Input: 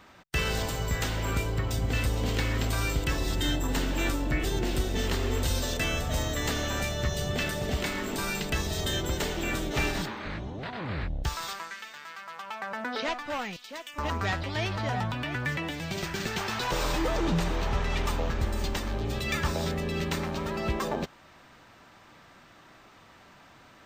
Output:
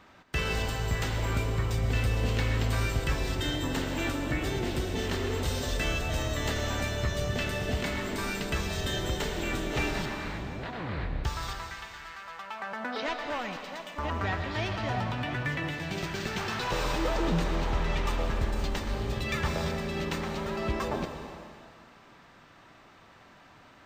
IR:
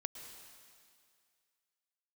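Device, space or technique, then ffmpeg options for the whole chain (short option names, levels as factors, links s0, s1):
swimming-pool hall: -filter_complex "[1:a]atrim=start_sample=2205[s0];[0:a][s0]afir=irnorm=-1:irlink=0,highshelf=f=5900:g=-6.5,asettb=1/sr,asplit=3[s1][s2][s3];[s1]atrim=end=13.944[s4];[s2]atrim=start=13.94:end=14.51,asetpts=PTS-STARTPTS,afade=t=in:d=0.004:c=qsin,afade=t=out:st=0.566:d=0.004:c=qsin,acrossover=split=3500[s5][s6];[s6]acompressor=threshold=0.00251:ratio=4:attack=1:release=60[s7];[s5][s7]amix=inputs=2:normalize=0[s8];[s3]atrim=start=14.506[s9];[s4][s8]acrossfade=d=0.004:c1=hsin:c2=qsin[s10];[s10][s9]acrossfade=d=0.004:c1=qsin:c2=hsin,volume=1.19"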